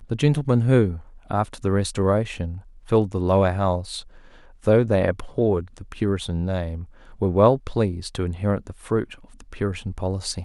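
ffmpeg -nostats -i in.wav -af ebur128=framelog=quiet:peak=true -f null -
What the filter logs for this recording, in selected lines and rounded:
Integrated loudness:
  I:         -22.9 LUFS
  Threshold: -33.5 LUFS
Loudness range:
  LRA:         1.8 LU
  Threshold: -43.4 LUFS
  LRA low:   -24.3 LUFS
  LRA high:  -22.5 LUFS
True peak:
  Peak:       -4.1 dBFS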